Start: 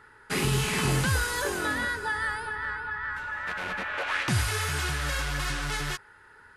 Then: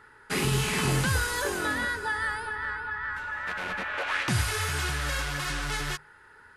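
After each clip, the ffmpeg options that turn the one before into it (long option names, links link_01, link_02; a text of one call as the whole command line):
ffmpeg -i in.wav -af "bandreject=frequency=50:width_type=h:width=6,bandreject=frequency=100:width_type=h:width=6,bandreject=frequency=150:width_type=h:width=6" out.wav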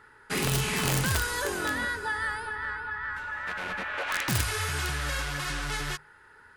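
ffmpeg -i in.wav -af "aeval=exprs='(mod(7.5*val(0)+1,2)-1)/7.5':channel_layout=same,volume=-1dB" out.wav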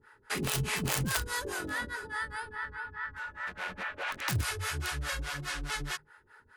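ffmpeg -i in.wav -filter_complex "[0:a]acrossover=split=440[link_01][link_02];[link_01]aeval=exprs='val(0)*(1-1/2+1/2*cos(2*PI*4.8*n/s))':channel_layout=same[link_03];[link_02]aeval=exprs='val(0)*(1-1/2-1/2*cos(2*PI*4.8*n/s))':channel_layout=same[link_04];[link_03][link_04]amix=inputs=2:normalize=0" out.wav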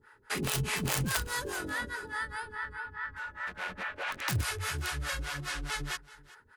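ffmpeg -i in.wav -af "aecho=1:1:383:0.0944" out.wav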